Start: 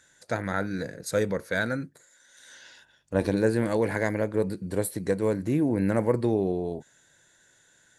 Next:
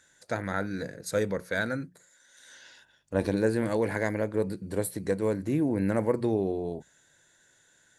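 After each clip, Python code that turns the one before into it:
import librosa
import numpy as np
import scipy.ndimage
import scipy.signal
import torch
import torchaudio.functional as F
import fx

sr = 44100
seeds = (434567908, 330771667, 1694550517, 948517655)

y = fx.hum_notches(x, sr, base_hz=60, count=3)
y = F.gain(torch.from_numpy(y), -2.0).numpy()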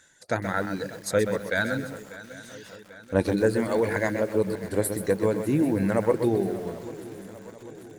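y = fx.dereverb_blind(x, sr, rt60_s=1.1)
y = fx.echo_swing(y, sr, ms=791, ratio=3, feedback_pct=58, wet_db=-17.5)
y = fx.echo_crushed(y, sr, ms=128, feedback_pct=35, bits=8, wet_db=-8.0)
y = F.gain(torch.from_numpy(y), 4.5).numpy()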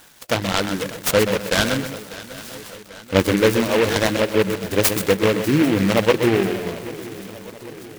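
y = fx.high_shelf(x, sr, hz=4600.0, db=10.0)
y = fx.noise_mod_delay(y, sr, seeds[0], noise_hz=1800.0, depth_ms=0.11)
y = F.gain(torch.from_numpy(y), 6.0).numpy()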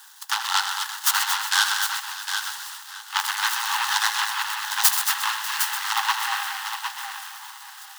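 y = scipy.signal.sosfilt(scipy.signal.cheby1(10, 1.0, 790.0, 'highpass', fs=sr, output='sos'), x)
y = fx.peak_eq(y, sr, hz=2300.0, db=-13.5, octaves=0.3)
y = fx.echo_multitap(y, sr, ms=(81, 228, 758), db=(-10.5, -8.0, -7.5))
y = F.gain(torch.from_numpy(y), 2.5).numpy()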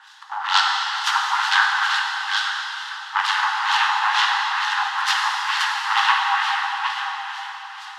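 y = fx.filter_lfo_lowpass(x, sr, shape='sine', hz=2.2, low_hz=670.0, high_hz=4200.0, q=1.2)
y = fx.rev_plate(y, sr, seeds[1], rt60_s=3.0, hf_ratio=1.0, predelay_ms=0, drr_db=-0.5)
y = F.gain(torch.from_numpy(y), 3.0).numpy()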